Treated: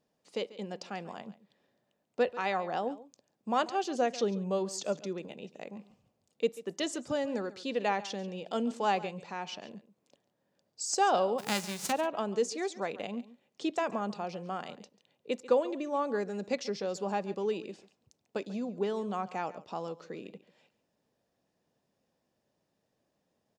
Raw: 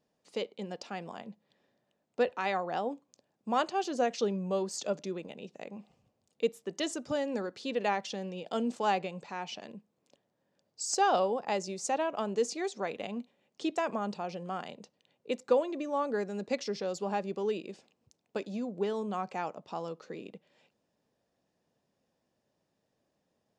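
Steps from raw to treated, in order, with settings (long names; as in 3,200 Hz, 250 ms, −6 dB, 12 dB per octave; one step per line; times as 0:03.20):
0:11.38–0:11.91: spectral envelope flattened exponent 0.3
on a send: single-tap delay 140 ms −17.5 dB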